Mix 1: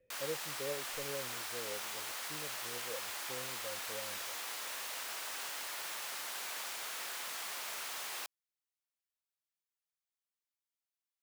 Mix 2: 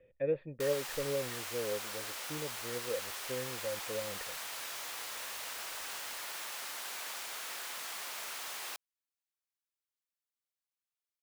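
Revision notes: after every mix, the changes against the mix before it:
speech +8.5 dB; background: entry +0.50 s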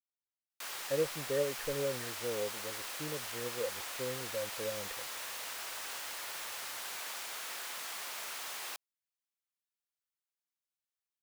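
speech: entry +0.70 s

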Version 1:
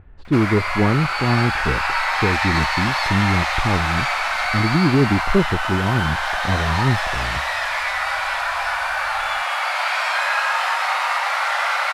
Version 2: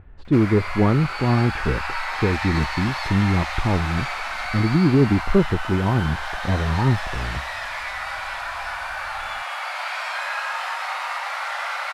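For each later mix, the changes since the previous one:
background -7.0 dB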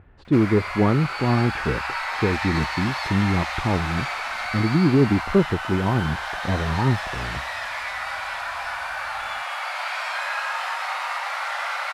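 speech: add high-pass 100 Hz 6 dB/octave

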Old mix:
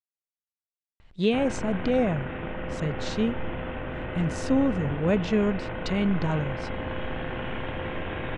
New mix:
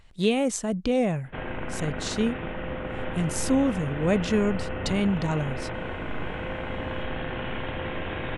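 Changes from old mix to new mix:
speech: entry -1.00 s; master: remove distance through air 120 m

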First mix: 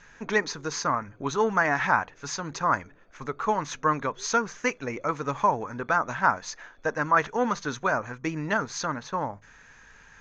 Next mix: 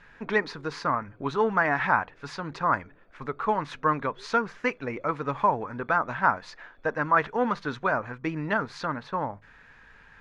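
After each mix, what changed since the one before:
master: remove resonant low-pass 6.4 kHz, resonance Q 12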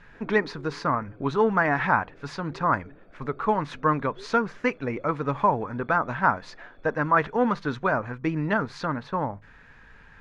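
background +5.5 dB; master: add bass shelf 430 Hz +6 dB

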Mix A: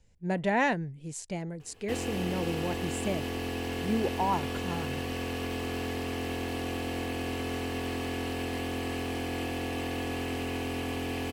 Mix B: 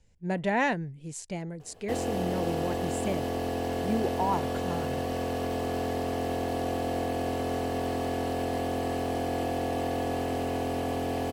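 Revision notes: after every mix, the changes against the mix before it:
background: add fifteen-band graphic EQ 160 Hz +5 dB, 630 Hz +12 dB, 2.5 kHz -7 dB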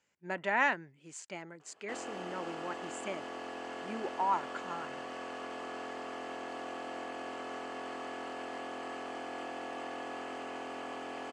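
background -4.0 dB; master: add cabinet simulation 460–7000 Hz, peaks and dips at 480 Hz -9 dB, 710 Hz -6 dB, 1.3 kHz +7 dB, 3.9 kHz -8 dB, 5.5 kHz -7 dB

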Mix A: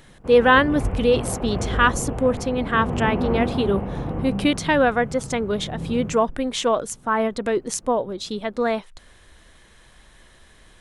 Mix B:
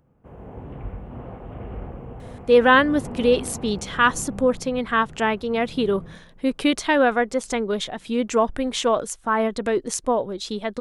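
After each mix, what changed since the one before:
speech: entry +2.20 s; background -9.0 dB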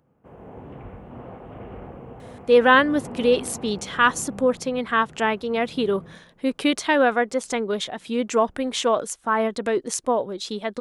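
master: add high-pass 170 Hz 6 dB/octave

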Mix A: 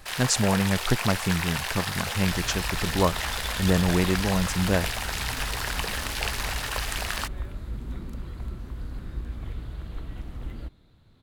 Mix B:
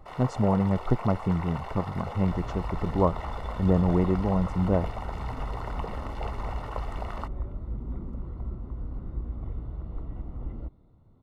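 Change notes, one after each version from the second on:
master: add Savitzky-Golay filter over 65 samples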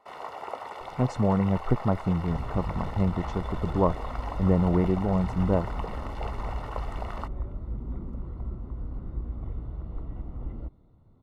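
speech: entry +0.80 s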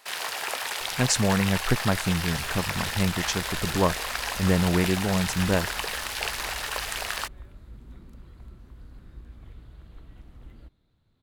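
second sound -11.0 dB; master: remove Savitzky-Golay filter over 65 samples

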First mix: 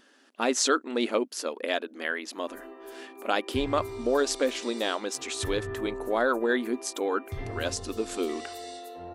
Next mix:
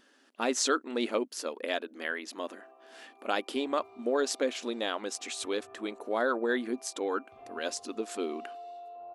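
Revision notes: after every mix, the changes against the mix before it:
speech -3.5 dB; background: add vowel filter a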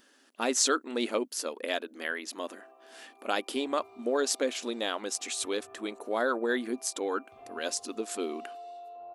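master: add treble shelf 7.1 kHz +10 dB

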